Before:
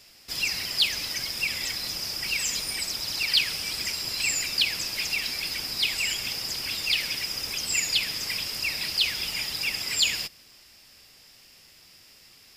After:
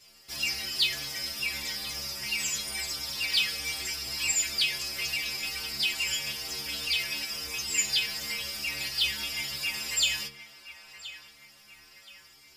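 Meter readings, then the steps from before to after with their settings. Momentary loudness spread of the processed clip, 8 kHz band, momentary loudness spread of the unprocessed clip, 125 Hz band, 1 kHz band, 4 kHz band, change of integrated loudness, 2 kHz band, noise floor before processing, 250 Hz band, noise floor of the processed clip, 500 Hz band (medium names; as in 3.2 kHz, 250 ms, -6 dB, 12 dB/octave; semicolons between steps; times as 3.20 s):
8 LU, -1.0 dB, 6 LU, -3.0 dB, -2.5 dB, -3.0 dB, -3.0 dB, -2.0 dB, -54 dBFS, -3.0 dB, -56 dBFS, -2.0 dB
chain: inharmonic resonator 68 Hz, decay 0.66 s, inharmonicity 0.008; on a send: band-passed feedback delay 1023 ms, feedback 55%, band-pass 1.3 kHz, level -11.5 dB; on the sum: trim +8.5 dB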